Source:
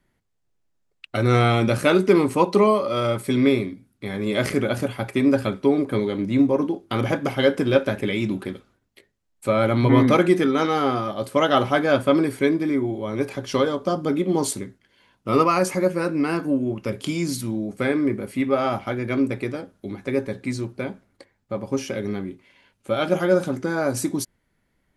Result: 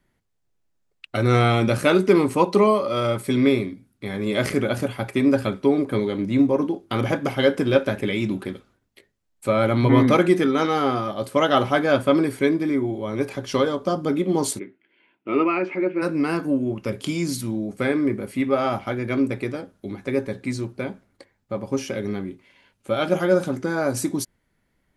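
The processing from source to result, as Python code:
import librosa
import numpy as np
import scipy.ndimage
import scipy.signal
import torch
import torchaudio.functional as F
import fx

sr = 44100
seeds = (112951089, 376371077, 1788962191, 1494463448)

y = fx.cabinet(x, sr, low_hz=320.0, low_slope=12, high_hz=2700.0, hz=(330.0, 520.0, 770.0, 1100.0, 1700.0, 2400.0), db=(8, -8, -5, -9, -5, 6), at=(14.58, 16.01), fade=0.02)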